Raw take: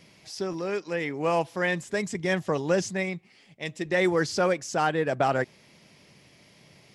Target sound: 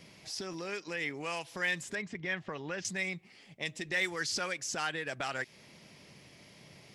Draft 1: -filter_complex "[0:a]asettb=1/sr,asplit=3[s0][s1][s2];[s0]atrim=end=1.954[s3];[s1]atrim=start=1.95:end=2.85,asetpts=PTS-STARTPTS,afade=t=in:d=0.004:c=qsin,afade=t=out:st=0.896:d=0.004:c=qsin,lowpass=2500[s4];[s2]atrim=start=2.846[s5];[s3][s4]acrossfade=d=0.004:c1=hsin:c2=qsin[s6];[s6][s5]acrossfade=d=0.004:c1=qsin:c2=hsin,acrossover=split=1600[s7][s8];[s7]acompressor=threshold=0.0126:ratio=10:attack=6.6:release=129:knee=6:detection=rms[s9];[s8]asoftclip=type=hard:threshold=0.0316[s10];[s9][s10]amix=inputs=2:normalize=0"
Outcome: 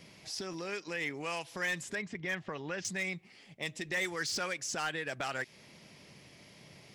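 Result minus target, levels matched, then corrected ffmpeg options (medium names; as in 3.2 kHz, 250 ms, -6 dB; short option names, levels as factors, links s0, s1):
hard clipper: distortion +19 dB
-filter_complex "[0:a]asettb=1/sr,asplit=3[s0][s1][s2];[s0]atrim=end=1.954[s3];[s1]atrim=start=1.95:end=2.85,asetpts=PTS-STARTPTS,afade=t=in:d=0.004:c=qsin,afade=t=out:st=0.896:d=0.004:c=qsin,lowpass=2500[s4];[s2]atrim=start=2.846[s5];[s3][s4]acrossfade=d=0.004:c1=hsin:c2=qsin[s6];[s6][s5]acrossfade=d=0.004:c1=qsin:c2=hsin,acrossover=split=1600[s7][s8];[s7]acompressor=threshold=0.0126:ratio=10:attack=6.6:release=129:knee=6:detection=rms[s9];[s8]asoftclip=type=hard:threshold=0.0708[s10];[s9][s10]amix=inputs=2:normalize=0"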